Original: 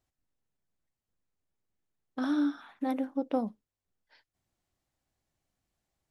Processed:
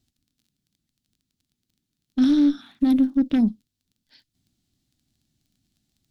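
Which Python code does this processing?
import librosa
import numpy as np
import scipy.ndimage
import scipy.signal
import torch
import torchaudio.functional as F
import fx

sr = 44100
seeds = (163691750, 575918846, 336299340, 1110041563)

y = fx.cheby_harmonics(x, sr, harmonics=(5, 6), levels_db=(-13, -14), full_scale_db=-16.0)
y = fx.dmg_crackle(y, sr, seeds[0], per_s=17.0, level_db=-52.0)
y = fx.graphic_eq_10(y, sr, hz=(125, 250, 500, 1000, 2000, 4000), db=(5, 11, -11, -11, -5, 7))
y = y * librosa.db_to_amplitude(1.0)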